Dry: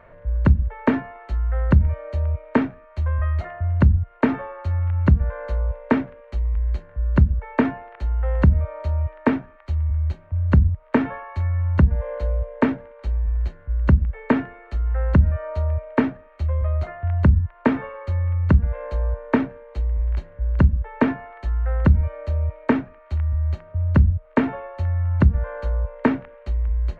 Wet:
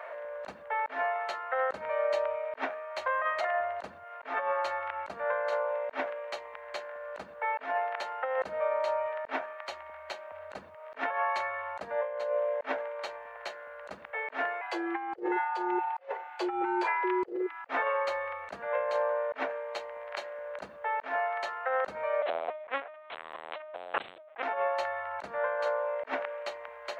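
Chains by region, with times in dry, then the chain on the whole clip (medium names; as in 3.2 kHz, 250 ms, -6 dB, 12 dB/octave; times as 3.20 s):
14.61–17.68 s: frequency shift +280 Hz + comb of notches 310 Hz
22.22–24.43 s: companding laws mixed up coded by A + bass shelf 440 Hz -7 dB + LPC vocoder at 8 kHz pitch kept
whole clip: Chebyshev high-pass 610 Hz, order 3; compressor with a negative ratio -37 dBFS, ratio -0.5; trim +5.5 dB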